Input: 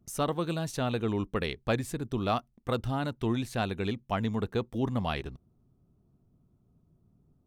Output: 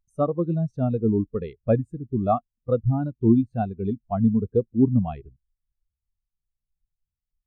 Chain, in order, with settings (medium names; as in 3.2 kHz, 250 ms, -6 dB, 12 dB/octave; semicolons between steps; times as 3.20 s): added noise brown -55 dBFS; spectral contrast expander 2.5:1; trim +8.5 dB